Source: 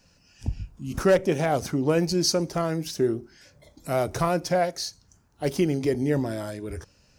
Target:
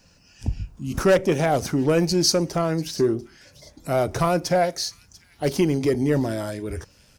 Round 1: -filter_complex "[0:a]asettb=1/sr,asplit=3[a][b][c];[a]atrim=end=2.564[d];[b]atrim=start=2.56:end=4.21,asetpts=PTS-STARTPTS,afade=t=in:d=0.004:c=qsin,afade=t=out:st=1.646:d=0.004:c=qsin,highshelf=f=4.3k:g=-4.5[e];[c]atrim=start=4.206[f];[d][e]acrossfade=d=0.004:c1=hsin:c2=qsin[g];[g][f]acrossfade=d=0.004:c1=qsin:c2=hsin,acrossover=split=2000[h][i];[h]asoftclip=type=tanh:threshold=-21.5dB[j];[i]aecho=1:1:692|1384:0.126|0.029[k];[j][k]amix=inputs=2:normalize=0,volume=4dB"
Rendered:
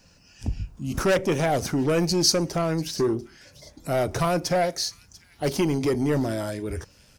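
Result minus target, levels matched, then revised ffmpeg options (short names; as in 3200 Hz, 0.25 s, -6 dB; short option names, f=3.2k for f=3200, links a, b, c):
soft clip: distortion +9 dB
-filter_complex "[0:a]asettb=1/sr,asplit=3[a][b][c];[a]atrim=end=2.564[d];[b]atrim=start=2.56:end=4.21,asetpts=PTS-STARTPTS,afade=t=in:d=0.004:c=qsin,afade=t=out:st=1.646:d=0.004:c=qsin,highshelf=f=4.3k:g=-4.5[e];[c]atrim=start=4.206[f];[d][e]acrossfade=d=0.004:c1=hsin:c2=qsin[g];[g][f]acrossfade=d=0.004:c1=qsin:c2=hsin,acrossover=split=2000[h][i];[h]asoftclip=type=tanh:threshold=-14dB[j];[i]aecho=1:1:692|1384:0.126|0.029[k];[j][k]amix=inputs=2:normalize=0,volume=4dB"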